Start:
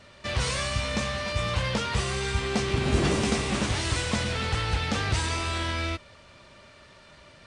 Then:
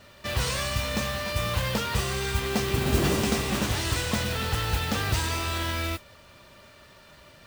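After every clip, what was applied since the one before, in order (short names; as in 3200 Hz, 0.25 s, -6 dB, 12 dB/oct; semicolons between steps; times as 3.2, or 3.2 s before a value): notch 2200 Hz, Q 19; modulation noise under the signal 14 dB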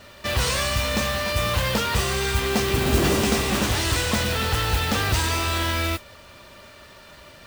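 bell 140 Hz -4 dB 0.86 oct; in parallel at -6 dB: overloaded stage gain 27 dB; on the sum: gain +2.5 dB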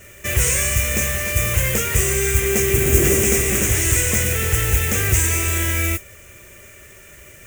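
EQ curve 120 Hz 0 dB, 260 Hz -9 dB, 380 Hz +1 dB, 930 Hz -16 dB, 2200 Hz +2 dB, 4400 Hz -18 dB, 6700 Hz +8 dB, 10000 Hz +6 dB, 15000 Hz +8 dB; gain +5 dB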